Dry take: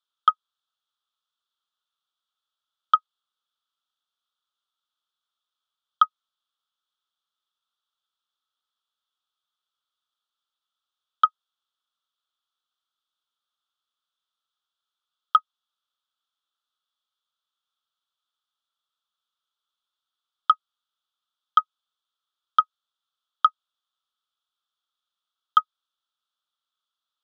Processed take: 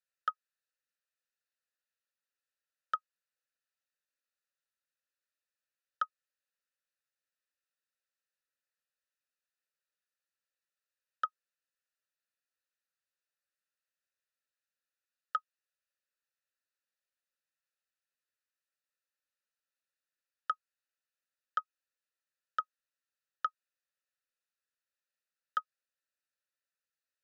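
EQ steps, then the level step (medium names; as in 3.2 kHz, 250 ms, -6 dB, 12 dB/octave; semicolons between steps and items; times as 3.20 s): vowel filter e; tilt EQ +5.5 dB/octave; static phaser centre 900 Hz, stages 6; +10.0 dB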